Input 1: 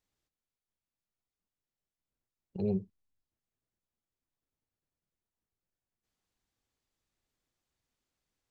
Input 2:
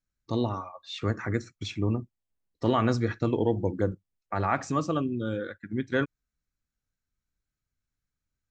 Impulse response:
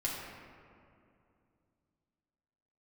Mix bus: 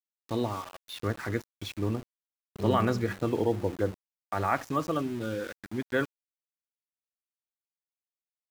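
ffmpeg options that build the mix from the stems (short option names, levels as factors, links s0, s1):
-filter_complex "[0:a]highshelf=f=2300:g=10.5,volume=0.473,asplit=2[s0][s1];[s1]volume=0.631[s2];[1:a]bass=f=250:g=-8,treble=f=4000:g=-4,volume=0.944[s3];[2:a]atrim=start_sample=2205[s4];[s2][s4]afir=irnorm=-1:irlink=0[s5];[s0][s3][s5]amix=inputs=3:normalize=0,lowshelf=f=98:g=9.5,aeval=exprs='val(0)*gte(abs(val(0)),0.01)':c=same"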